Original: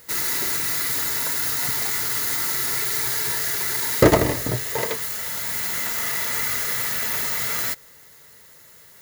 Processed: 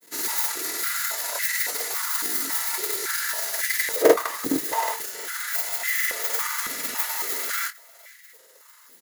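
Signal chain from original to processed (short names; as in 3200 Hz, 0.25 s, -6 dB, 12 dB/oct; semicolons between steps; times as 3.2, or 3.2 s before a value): high shelf 5700 Hz +9 dB; transient shaper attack +6 dB, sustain -10 dB; grains, spray 33 ms, pitch spread up and down by 0 st; auto swell 0.103 s; grains, pitch spread up and down by 0 st; doubler 22 ms -11 dB; echo 0.456 s -22 dB; stepped high-pass 3.6 Hz 280–1900 Hz; gain -3.5 dB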